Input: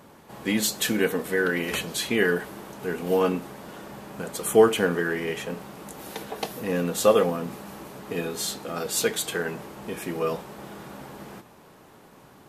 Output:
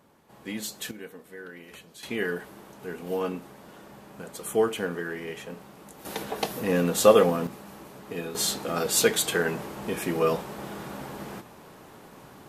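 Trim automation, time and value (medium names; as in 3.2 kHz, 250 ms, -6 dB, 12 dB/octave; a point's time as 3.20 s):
-10 dB
from 0.91 s -18.5 dB
from 2.03 s -7 dB
from 6.05 s +2 dB
from 7.47 s -4.5 dB
from 8.35 s +3 dB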